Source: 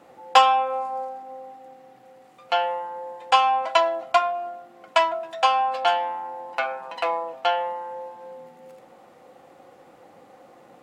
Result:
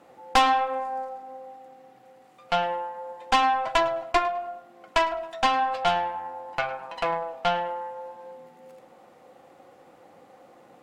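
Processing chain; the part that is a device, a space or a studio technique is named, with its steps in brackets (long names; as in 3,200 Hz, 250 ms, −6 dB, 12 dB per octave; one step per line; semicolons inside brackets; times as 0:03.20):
rockabilly slapback (tube saturation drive 15 dB, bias 0.7; tape delay 103 ms, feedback 35%, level −15 dB, low-pass 3,700 Hz)
level +1.5 dB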